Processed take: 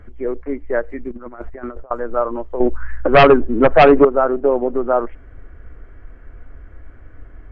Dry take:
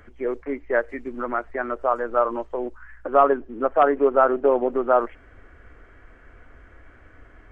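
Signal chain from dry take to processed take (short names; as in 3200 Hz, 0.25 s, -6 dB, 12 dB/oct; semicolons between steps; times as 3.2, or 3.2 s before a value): tilt -2.5 dB/oct; 1.1–1.91 negative-ratio compressor -29 dBFS, ratio -0.5; 2.6–4.05 sine folder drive 7 dB, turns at -3.5 dBFS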